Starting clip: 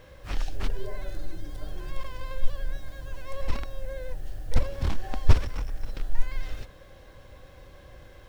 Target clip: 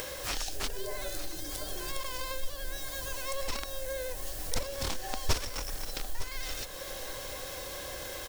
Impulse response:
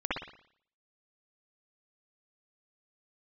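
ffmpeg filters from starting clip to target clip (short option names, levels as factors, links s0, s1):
-af "bass=f=250:g=-12,treble=f=4000:g=15,acompressor=mode=upward:threshold=0.0562:ratio=2.5,aecho=1:1:908:0.2,volume=0.794"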